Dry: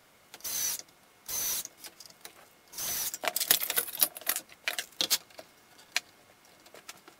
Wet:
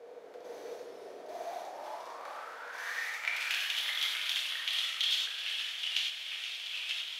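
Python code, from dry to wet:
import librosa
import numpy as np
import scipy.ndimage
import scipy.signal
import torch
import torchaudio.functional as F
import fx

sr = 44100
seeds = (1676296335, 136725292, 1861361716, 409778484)

y = fx.bin_compress(x, sr, power=0.4)
y = fx.filter_sweep_bandpass(y, sr, from_hz=480.0, to_hz=3200.0, start_s=0.89, end_s=3.83, q=7.3)
y = fx.echo_pitch(y, sr, ms=213, semitones=-2, count=3, db_per_echo=-6.0)
y = y + 10.0 ** (-11.5 / 20.0) * np.pad(y, (int(473 * sr / 1000.0), 0))[:len(y)]
y = fx.rev_gated(y, sr, seeds[0], gate_ms=130, shape='flat', drr_db=-2.0)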